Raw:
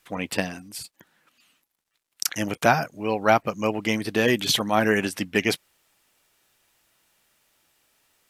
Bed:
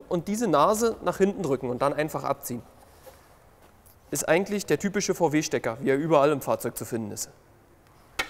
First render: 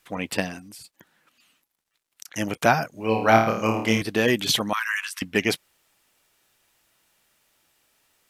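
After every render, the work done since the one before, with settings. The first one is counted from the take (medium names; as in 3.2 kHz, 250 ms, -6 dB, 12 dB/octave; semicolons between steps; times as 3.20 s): 0.59–2.34 s: compression, threshold -40 dBFS; 2.94–4.02 s: flutter echo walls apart 4.6 m, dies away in 0.53 s; 4.73–5.22 s: steep high-pass 1 kHz 72 dB/octave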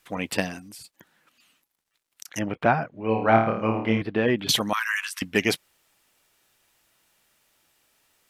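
2.39–4.49 s: distance through air 430 m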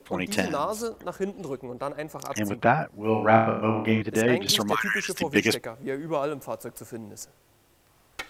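add bed -7.5 dB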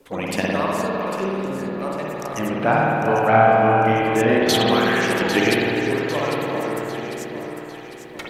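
echo whose repeats swap between lows and highs 400 ms, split 1.9 kHz, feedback 69%, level -6 dB; spring tank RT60 2.4 s, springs 52 ms, chirp 35 ms, DRR -3.5 dB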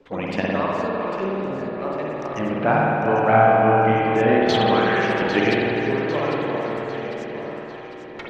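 distance through air 190 m; repeats whose band climbs or falls 310 ms, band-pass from 230 Hz, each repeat 0.7 oct, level -7 dB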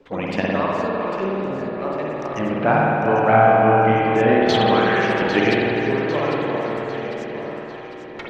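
trim +1.5 dB; peak limiter -3 dBFS, peak gain reduction 1 dB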